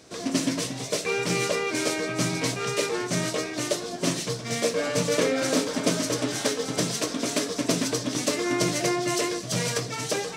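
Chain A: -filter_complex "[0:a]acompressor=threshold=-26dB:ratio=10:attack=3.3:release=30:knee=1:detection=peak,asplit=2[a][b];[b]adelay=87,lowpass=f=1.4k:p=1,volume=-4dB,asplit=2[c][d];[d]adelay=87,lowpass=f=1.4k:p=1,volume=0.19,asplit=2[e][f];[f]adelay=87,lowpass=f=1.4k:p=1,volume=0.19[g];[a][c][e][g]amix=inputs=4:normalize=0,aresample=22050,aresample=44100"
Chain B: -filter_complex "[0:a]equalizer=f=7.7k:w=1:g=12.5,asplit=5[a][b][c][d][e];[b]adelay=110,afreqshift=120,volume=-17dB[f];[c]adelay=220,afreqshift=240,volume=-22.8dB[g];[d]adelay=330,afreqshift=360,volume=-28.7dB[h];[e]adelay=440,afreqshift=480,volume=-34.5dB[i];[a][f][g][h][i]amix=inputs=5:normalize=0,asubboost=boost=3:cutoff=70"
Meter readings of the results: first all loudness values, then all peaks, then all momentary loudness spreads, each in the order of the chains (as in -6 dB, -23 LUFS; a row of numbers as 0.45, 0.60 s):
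-28.0, -21.0 LUFS; -14.0, -4.0 dBFS; 2, 3 LU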